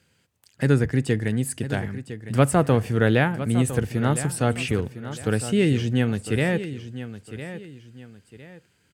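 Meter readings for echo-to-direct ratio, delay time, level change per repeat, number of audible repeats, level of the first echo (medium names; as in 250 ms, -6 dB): -12.0 dB, 1007 ms, -9.5 dB, 2, -12.5 dB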